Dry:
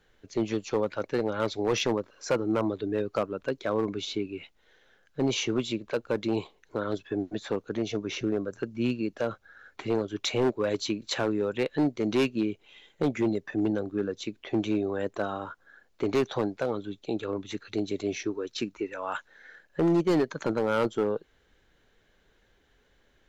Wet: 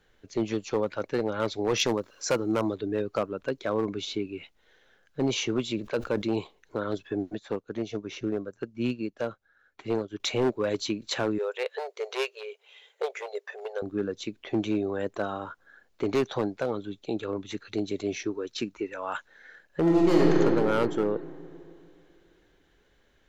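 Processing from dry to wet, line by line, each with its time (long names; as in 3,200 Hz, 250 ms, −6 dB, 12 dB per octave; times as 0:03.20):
0:01.79–0:02.75: high-shelf EQ 4,400 Hz +10.5 dB
0:05.72–0:06.33: level that may fall only so fast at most 140 dB per second
0:07.35–0:10.20: expander for the loud parts, over −49 dBFS
0:11.38–0:13.82: linear-phase brick-wall high-pass 390 Hz
0:19.81–0:20.39: thrown reverb, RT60 2.7 s, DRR −3.5 dB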